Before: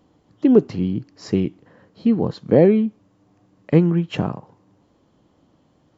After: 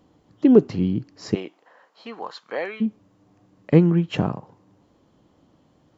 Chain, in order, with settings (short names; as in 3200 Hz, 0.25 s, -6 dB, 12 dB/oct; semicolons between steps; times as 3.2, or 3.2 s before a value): 1.34–2.8 resonant high-pass 640 Hz -> 1400 Hz, resonance Q 1.5